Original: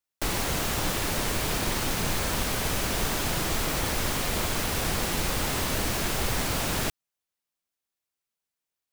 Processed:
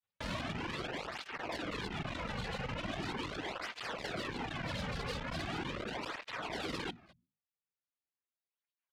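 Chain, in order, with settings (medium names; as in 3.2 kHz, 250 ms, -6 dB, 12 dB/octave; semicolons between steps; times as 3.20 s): octave divider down 2 oct, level +1 dB; reverb removal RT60 1.6 s; hum notches 60/120/180/240 Hz; in parallel at +1 dB: peak limiter -22.5 dBFS, peak gain reduction 8.5 dB; on the sum: resampled via 8 kHz; saturation -29.5 dBFS, distortion -8 dB; echo from a far wall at 40 m, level -21 dB; granulator, spray 12 ms, pitch spread up and down by 7 st; cancelling through-zero flanger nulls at 0.4 Hz, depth 3.3 ms; trim -1.5 dB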